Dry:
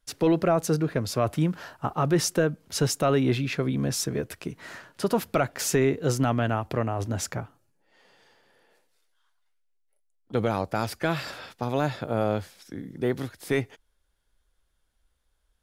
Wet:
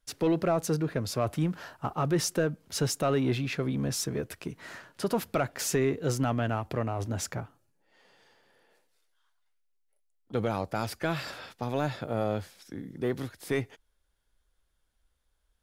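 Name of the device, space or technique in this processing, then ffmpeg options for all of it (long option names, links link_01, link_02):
parallel distortion: -filter_complex "[0:a]asplit=2[link_01][link_02];[link_02]asoftclip=type=hard:threshold=-29dB,volume=-9dB[link_03];[link_01][link_03]amix=inputs=2:normalize=0,volume=-5dB"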